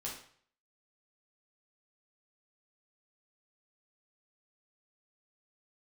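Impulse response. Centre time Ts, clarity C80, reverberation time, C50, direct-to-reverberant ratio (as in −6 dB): 33 ms, 9.0 dB, 0.55 s, 4.5 dB, −4.0 dB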